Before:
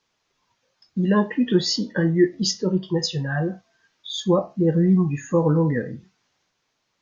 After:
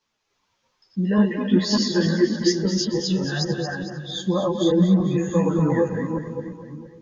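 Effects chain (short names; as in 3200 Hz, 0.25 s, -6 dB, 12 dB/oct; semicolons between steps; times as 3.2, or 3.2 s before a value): reverse delay 0.294 s, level -0.5 dB; split-band echo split 400 Hz, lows 0.341 s, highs 0.226 s, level -8.5 dB; ensemble effect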